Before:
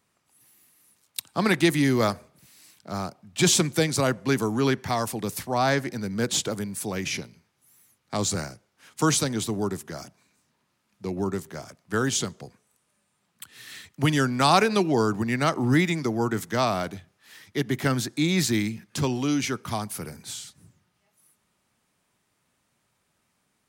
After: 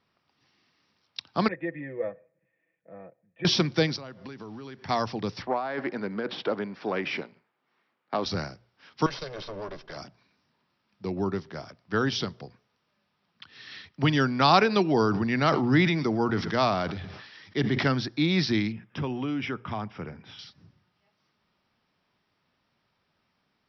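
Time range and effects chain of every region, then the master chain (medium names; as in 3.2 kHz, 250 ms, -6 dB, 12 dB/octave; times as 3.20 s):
1.48–3.45 s: cascade formant filter e + distance through air 240 m + comb 6.1 ms, depth 69%
3.96–4.89 s: compression 20:1, threshold -36 dBFS + companded quantiser 6-bit
5.42–8.26 s: compressor with a negative ratio -26 dBFS, ratio -0.5 + waveshaping leveller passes 1 + band-pass 310–2200 Hz
9.06–9.97 s: comb filter that takes the minimum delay 1.9 ms + peaking EQ 83 Hz -14.5 dB 0.75 oct + compression 2.5:1, threshold -34 dBFS
14.88–17.85 s: delay 111 ms -23.5 dB + decay stretcher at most 45 dB/s
18.72–20.39 s: Savitzky-Golay filter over 25 samples + compression 3:1, threshold -26 dBFS
whole clip: Chebyshev low-pass 5.6 kHz, order 8; hum notches 60/120 Hz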